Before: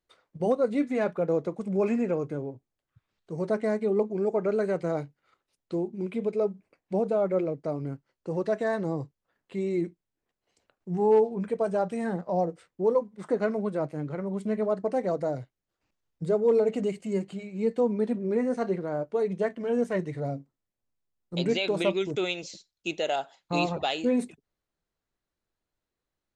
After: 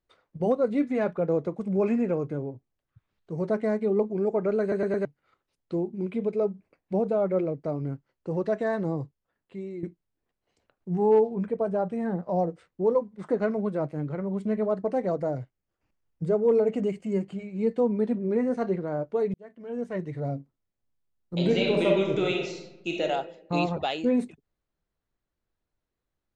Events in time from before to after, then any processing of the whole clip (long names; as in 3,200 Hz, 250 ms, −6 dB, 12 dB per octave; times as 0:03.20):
0:04.61: stutter in place 0.11 s, 4 plays
0:08.86–0:09.83: fade out, to −12.5 dB
0:11.47–0:12.23: high-shelf EQ 2,100 Hz −9 dB
0:15.17–0:17.48: parametric band 3,900 Hz −7 dB 0.25 octaves
0:19.34–0:20.36: fade in linear
0:21.36–0:23.02: thrown reverb, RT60 0.93 s, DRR −0.5 dB
whole clip: low-pass filter 3,500 Hz 6 dB per octave; low-shelf EQ 160 Hz +5.5 dB